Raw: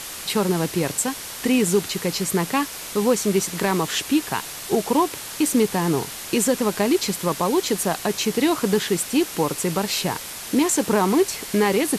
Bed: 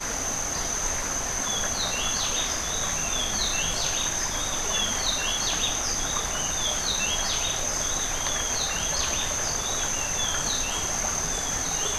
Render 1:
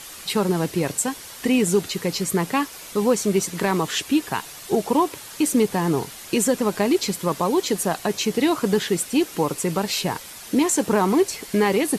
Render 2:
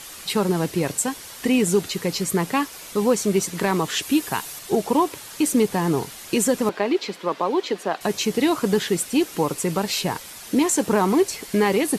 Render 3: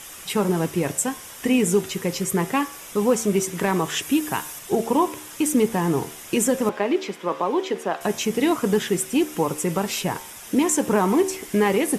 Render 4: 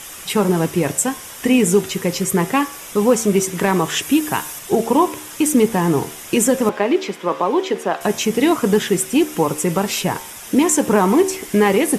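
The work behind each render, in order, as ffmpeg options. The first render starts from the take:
ffmpeg -i in.wav -af "afftdn=noise_reduction=7:noise_floor=-35" out.wav
ffmpeg -i in.wav -filter_complex "[0:a]asettb=1/sr,asplit=3[link_01][link_02][link_03];[link_01]atrim=end=4.024[link_04];[link_02]atrim=start=4.02:end=4.59,asetpts=PTS-STARTPTS,afade=type=in:duration=0.004:curve=qsin,afade=type=out:start_time=0.566:duration=0.004:curve=qsin,highshelf=frequency=7800:gain=8[link_05];[link_03]atrim=start=4.586[link_06];[link_04][link_05]acrossfade=duration=0.004:curve1=hsin:curve2=qsin[link_07];[link_07][link_06]acrossfade=duration=0.004:curve1=qsin:curve2=hsin,asettb=1/sr,asplit=3[link_08][link_09][link_10];[link_08]atrim=end=6.694[link_11];[link_09]atrim=start=6.69:end=8.01,asetpts=PTS-STARTPTS,afade=type=in:duration=0.004:curve=qsin,afade=type=out:start_time=1.316:duration=0.004:curve=qsin,acrossover=split=250 4400:gain=0.1 1 0.1[link_12][link_13][link_14];[link_12][link_13][link_14]amix=inputs=3:normalize=0[link_15];[link_10]atrim=start=8.006[link_16];[link_11][link_15]acrossfade=duration=0.004:curve1=hsin:curve2=qsin[link_17];[link_17][link_16]acrossfade=duration=0.004:curve1=qsin:curve2=hsin" out.wav
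ffmpeg -i in.wav -af "equalizer=frequency=4300:width=5.1:gain=-12,bandreject=frequency=75.91:width_type=h:width=4,bandreject=frequency=151.82:width_type=h:width=4,bandreject=frequency=227.73:width_type=h:width=4,bandreject=frequency=303.64:width_type=h:width=4,bandreject=frequency=379.55:width_type=h:width=4,bandreject=frequency=455.46:width_type=h:width=4,bandreject=frequency=531.37:width_type=h:width=4,bandreject=frequency=607.28:width_type=h:width=4,bandreject=frequency=683.19:width_type=h:width=4,bandreject=frequency=759.1:width_type=h:width=4,bandreject=frequency=835.01:width_type=h:width=4,bandreject=frequency=910.92:width_type=h:width=4,bandreject=frequency=986.83:width_type=h:width=4,bandreject=frequency=1062.74:width_type=h:width=4,bandreject=frequency=1138.65:width_type=h:width=4,bandreject=frequency=1214.56:width_type=h:width=4,bandreject=frequency=1290.47:width_type=h:width=4,bandreject=frequency=1366.38:width_type=h:width=4,bandreject=frequency=1442.29:width_type=h:width=4,bandreject=frequency=1518.2:width_type=h:width=4,bandreject=frequency=1594.11:width_type=h:width=4,bandreject=frequency=1670.02:width_type=h:width=4,bandreject=frequency=1745.93:width_type=h:width=4,bandreject=frequency=1821.84:width_type=h:width=4,bandreject=frequency=1897.75:width_type=h:width=4,bandreject=frequency=1973.66:width_type=h:width=4,bandreject=frequency=2049.57:width_type=h:width=4,bandreject=frequency=2125.48:width_type=h:width=4,bandreject=frequency=2201.39:width_type=h:width=4,bandreject=frequency=2277.3:width_type=h:width=4,bandreject=frequency=2353.21:width_type=h:width=4,bandreject=frequency=2429.12:width_type=h:width=4" out.wav
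ffmpeg -i in.wav -af "volume=5dB" out.wav

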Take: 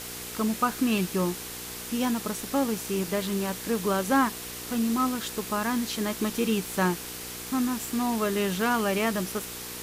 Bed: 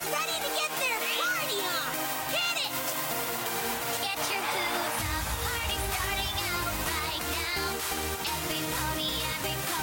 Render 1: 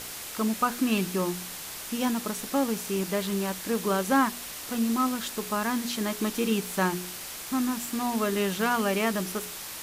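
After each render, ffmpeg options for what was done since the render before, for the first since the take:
ffmpeg -i in.wav -af "bandreject=frequency=60:width_type=h:width=4,bandreject=frequency=120:width_type=h:width=4,bandreject=frequency=180:width_type=h:width=4,bandreject=frequency=240:width_type=h:width=4,bandreject=frequency=300:width_type=h:width=4,bandreject=frequency=360:width_type=h:width=4,bandreject=frequency=420:width_type=h:width=4,bandreject=frequency=480:width_type=h:width=4" out.wav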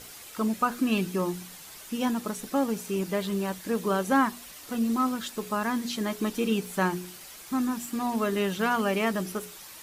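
ffmpeg -i in.wav -af "afftdn=noise_reduction=9:noise_floor=-39" out.wav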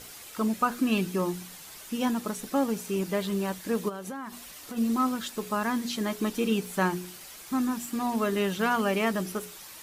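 ffmpeg -i in.wav -filter_complex "[0:a]asplit=3[link_01][link_02][link_03];[link_01]afade=type=out:start_time=3.88:duration=0.02[link_04];[link_02]acompressor=threshold=-33dB:ratio=16:attack=3.2:release=140:knee=1:detection=peak,afade=type=in:start_time=3.88:duration=0.02,afade=type=out:start_time=4.76:duration=0.02[link_05];[link_03]afade=type=in:start_time=4.76:duration=0.02[link_06];[link_04][link_05][link_06]amix=inputs=3:normalize=0" out.wav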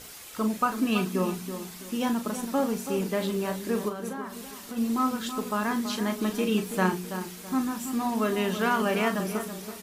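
ffmpeg -i in.wav -filter_complex "[0:a]asplit=2[link_01][link_02];[link_02]adelay=38,volume=-8.5dB[link_03];[link_01][link_03]amix=inputs=2:normalize=0,asplit=2[link_04][link_05];[link_05]adelay=329,lowpass=frequency=1700:poles=1,volume=-9dB,asplit=2[link_06][link_07];[link_07]adelay=329,lowpass=frequency=1700:poles=1,volume=0.36,asplit=2[link_08][link_09];[link_09]adelay=329,lowpass=frequency=1700:poles=1,volume=0.36,asplit=2[link_10][link_11];[link_11]adelay=329,lowpass=frequency=1700:poles=1,volume=0.36[link_12];[link_04][link_06][link_08][link_10][link_12]amix=inputs=5:normalize=0" out.wav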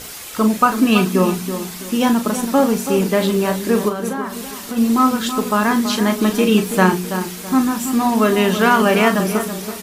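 ffmpeg -i in.wav -af "volume=11.5dB,alimiter=limit=-1dB:level=0:latency=1" out.wav

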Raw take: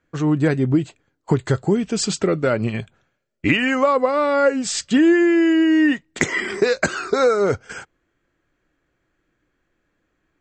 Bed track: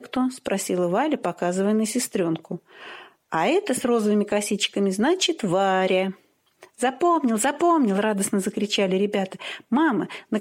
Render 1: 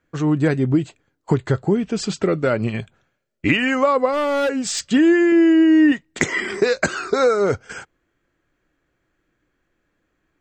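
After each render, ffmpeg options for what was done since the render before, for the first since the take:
ffmpeg -i in.wav -filter_complex "[0:a]asettb=1/sr,asplit=3[link_01][link_02][link_03];[link_01]atrim=end=1.384[link_04];[link_02]atrim=start=1.38:end=2.23,asetpts=PTS-STARTPTS,afade=type=in:duration=0.004:curve=qsin,afade=type=out:start_time=0.846:duration=0.004:curve=qsin,highshelf=frequency=5500:gain=-11.5[link_05];[link_03]atrim=start=2.226[link_06];[link_04][link_05]acrossfade=duration=0.004:curve1=hsin:curve2=qsin[link_07];[link_07][link_06]acrossfade=duration=0.004:curve1=qsin:curve2=hsin,asettb=1/sr,asplit=3[link_08][link_09][link_10];[link_08]atrim=end=4.124[link_11];[link_09]atrim=start=4.12:end=4.81,asetpts=PTS-STARTPTS,afade=type=in:duration=0.004:curve=qsin,afade=type=out:start_time=0.686:duration=0.004:curve=qsin,asoftclip=type=hard:threshold=-17dB[link_12];[link_10]atrim=start=4.806[link_13];[link_11][link_12]acrossfade=duration=0.004:curve1=hsin:curve2=qsin[link_14];[link_14][link_13]acrossfade=duration=0.004:curve1=qsin:curve2=hsin,asettb=1/sr,asplit=3[link_15][link_16][link_17];[link_15]atrim=end=5.324[link_18];[link_16]atrim=start=5.32:end=5.92,asetpts=PTS-STARTPTS,afade=type=in:duration=0.004:curve=qsin,afade=type=out:start_time=0.596:duration=0.004:curve=qsin,tiltshelf=frequency=880:gain=3.5[link_19];[link_17]atrim=start=5.916[link_20];[link_18][link_19]acrossfade=duration=0.004:curve1=hsin:curve2=qsin[link_21];[link_21][link_20]acrossfade=duration=0.004:curve1=qsin:curve2=hsin" out.wav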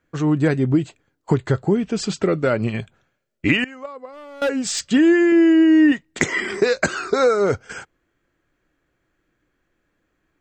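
ffmpeg -i in.wav -filter_complex "[0:a]asettb=1/sr,asplit=3[link_01][link_02][link_03];[link_01]atrim=end=3.644[link_04];[link_02]atrim=start=3.64:end=4.42,asetpts=PTS-STARTPTS,afade=type=in:duration=0.004:curve=qsin,afade=type=out:start_time=0.776:duration=0.004:curve=qsin,agate=range=-19dB:threshold=-12dB:ratio=16:release=100:detection=peak[link_05];[link_03]atrim=start=4.416[link_06];[link_04][link_05]acrossfade=duration=0.004:curve1=hsin:curve2=qsin[link_07];[link_07][link_06]acrossfade=duration=0.004:curve1=qsin:curve2=hsin" out.wav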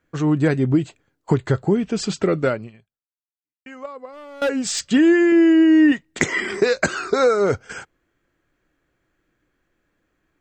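ffmpeg -i in.wav -filter_complex "[0:a]asplit=2[link_01][link_02];[link_01]atrim=end=3.66,asetpts=PTS-STARTPTS,afade=type=out:start_time=2.48:duration=1.18:curve=exp[link_03];[link_02]atrim=start=3.66,asetpts=PTS-STARTPTS,afade=type=in:duration=0.004:curve=hsin[link_04];[link_03][link_04]concat=n=2:v=0:a=1" out.wav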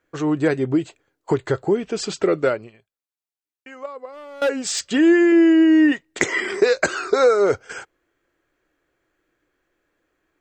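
ffmpeg -i in.wav -af "lowshelf=frequency=280:width_type=q:width=1.5:gain=-6.5" out.wav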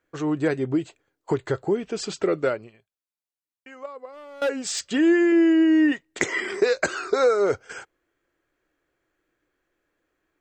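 ffmpeg -i in.wav -af "volume=-4dB" out.wav

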